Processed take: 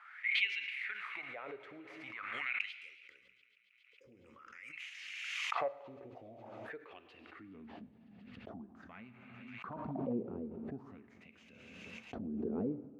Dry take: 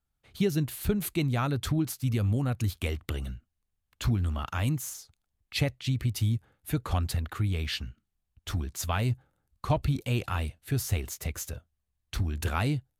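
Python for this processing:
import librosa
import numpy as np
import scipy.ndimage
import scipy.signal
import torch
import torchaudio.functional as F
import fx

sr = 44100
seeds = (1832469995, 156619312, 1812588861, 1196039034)

p1 = fx.tracing_dist(x, sr, depth_ms=0.037)
p2 = fx.spec_box(p1, sr, start_s=2.72, length_s=2.01, low_hz=570.0, high_hz=4700.0, gain_db=-28)
p3 = fx.rider(p2, sr, range_db=10, speed_s=2.0)
p4 = p2 + (p3 * 10.0 ** (2.0 / 20.0))
p5 = fx.filter_sweep_bandpass(p4, sr, from_hz=2100.0, to_hz=220.0, start_s=4.85, end_s=7.7, q=5.7)
p6 = fx.clip_hard(p5, sr, threshold_db=-27.0, at=(9.71, 10.12), fade=0.02)
p7 = fx.wah_lfo(p6, sr, hz=0.46, low_hz=420.0, high_hz=2800.0, q=5.8)
p8 = p7 + fx.echo_wet_highpass(p7, sr, ms=138, feedback_pct=77, hz=2100.0, wet_db=-20, dry=0)
p9 = fx.rev_gated(p8, sr, seeds[0], gate_ms=480, shape='falling', drr_db=10.0)
p10 = fx.pre_swell(p9, sr, db_per_s=26.0)
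y = p10 * 10.0 ** (13.0 / 20.0)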